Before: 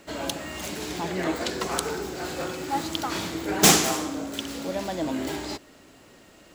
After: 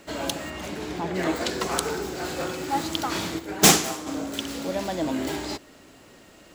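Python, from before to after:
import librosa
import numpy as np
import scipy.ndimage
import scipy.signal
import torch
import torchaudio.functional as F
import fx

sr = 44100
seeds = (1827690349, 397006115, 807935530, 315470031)

y = fx.high_shelf(x, sr, hz=fx.line((0.49, 4800.0), (1.14, 2800.0)), db=-11.5, at=(0.49, 1.14), fade=0.02)
y = fx.upward_expand(y, sr, threshold_db=-29.0, expansion=1.5, at=(3.38, 4.06), fade=0.02)
y = F.gain(torch.from_numpy(y), 1.5).numpy()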